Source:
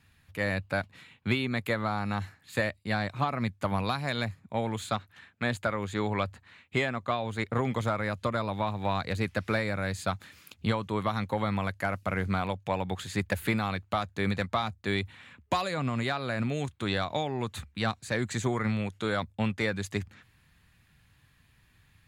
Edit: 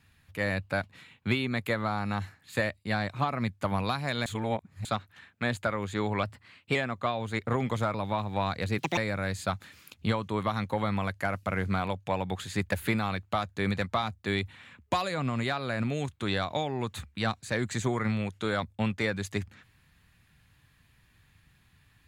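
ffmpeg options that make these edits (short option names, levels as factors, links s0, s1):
-filter_complex "[0:a]asplit=8[s0][s1][s2][s3][s4][s5][s6][s7];[s0]atrim=end=4.262[s8];[s1]atrim=start=4.258:end=4.852,asetpts=PTS-STARTPTS,areverse[s9];[s2]atrim=start=4.848:end=6.234[s10];[s3]atrim=start=6.23:end=6.8,asetpts=PTS-STARTPTS,asetrate=48069,aresample=44100,atrim=end_sample=23061,asetpts=PTS-STARTPTS[s11];[s4]atrim=start=6.796:end=7.992[s12];[s5]atrim=start=8.428:end=9.274[s13];[s6]atrim=start=9.27:end=9.57,asetpts=PTS-STARTPTS,asetrate=69678,aresample=44100,atrim=end_sample=8373,asetpts=PTS-STARTPTS[s14];[s7]atrim=start=9.566[s15];[s8][s9]acrossfade=d=0.004:c1=hsin:c2=hsin[s16];[s16][s10]acrossfade=d=0.004:c1=hsin:c2=hsin[s17];[s17][s11]acrossfade=d=0.004:c1=hsin:c2=hsin[s18];[s18][s12]acrossfade=d=0.004:c1=hsin:c2=hsin[s19];[s19][s13]acrossfade=d=0.004:c1=hsin:c2=hsin[s20];[s20][s14]acrossfade=d=0.004:c1=hsin:c2=hsin[s21];[s21][s15]acrossfade=d=0.004:c1=hsin:c2=hsin"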